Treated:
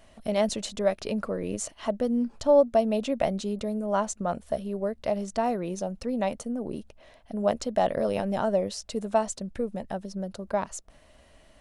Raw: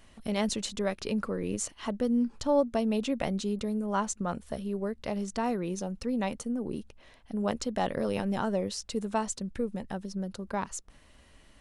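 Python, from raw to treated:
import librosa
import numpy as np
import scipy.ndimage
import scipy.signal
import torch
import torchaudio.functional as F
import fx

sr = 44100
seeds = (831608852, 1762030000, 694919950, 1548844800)

y = fx.peak_eq(x, sr, hz=640.0, db=11.0, octaves=0.45)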